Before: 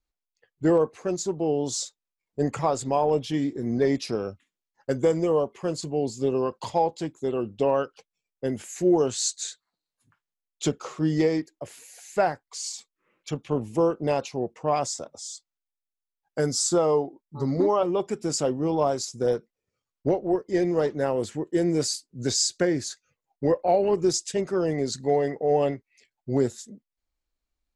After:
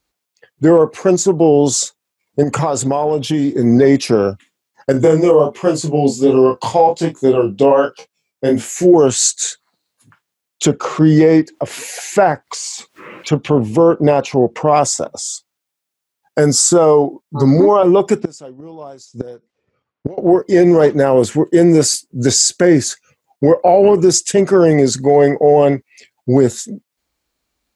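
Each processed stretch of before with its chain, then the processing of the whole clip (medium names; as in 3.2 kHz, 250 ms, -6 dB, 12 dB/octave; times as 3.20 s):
2.43–3.54 s: peaking EQ 2 kHz -4 dB 0.39 oct + compression 12:1, threshold -27 dBFS
4.92–8.94 s: chorus 1.3 Hz, delay 15 ms, depth 7.1 ms + doubling 26 ms -6.5 dB
10.65–14.65 s: low-pass 3.4 kHz 6 dB/octave + upward compressor, threshold -33 dBFS
18.20–20.18 s: level-controlled noise filter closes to 1.8 kHz, open at -22.5 dBFS + inverted gate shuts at -22 dBFS, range -26 dB
whole clip: high-pass 88 Hz; dynamic bell 4.3 kHz, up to -7 dB, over -47 dBFS, Q 1.3; loudness maximiser +17.5 dB; trim -1 dB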